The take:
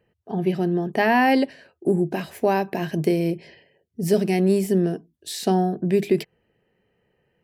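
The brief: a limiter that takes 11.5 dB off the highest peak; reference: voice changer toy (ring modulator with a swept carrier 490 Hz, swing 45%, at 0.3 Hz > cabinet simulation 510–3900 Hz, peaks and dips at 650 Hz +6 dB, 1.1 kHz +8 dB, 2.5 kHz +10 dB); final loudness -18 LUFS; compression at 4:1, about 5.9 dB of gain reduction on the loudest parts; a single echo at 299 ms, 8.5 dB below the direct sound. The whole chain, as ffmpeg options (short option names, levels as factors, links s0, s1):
-af "acompressor=threshold=0.0891:ratio=4,alimiter=limit=0.075:level=0:latency=1,aecho=1:1:299:0.376,aeval=exprs='val(0)*sin(2*PI*490*n/s+490*0.45/0.3*sin(2*PI*0.3*n/s))':c=same,highpass=510,equalizer=f=650:t=q:w=4:g=6,equalizer=f=1100:t=q:w=4:g=8,equalizer=f=2500:t=q:w=4:g=10,lowpass=f=3900:w=0.5412,lowpass=f=3900:w=1.3066,volume=5.62"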